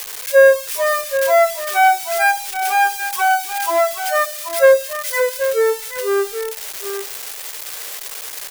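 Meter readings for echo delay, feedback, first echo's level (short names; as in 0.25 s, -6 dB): 0.781 s, no steady repeat, -9.5 dB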